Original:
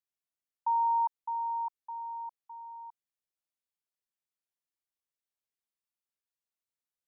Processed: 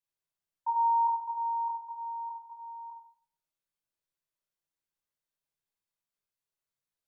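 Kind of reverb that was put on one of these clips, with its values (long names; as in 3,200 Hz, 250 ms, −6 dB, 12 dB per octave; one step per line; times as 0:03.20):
rectangular room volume 960 cubic metres, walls furnished, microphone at 5.2 metres
level −5 dB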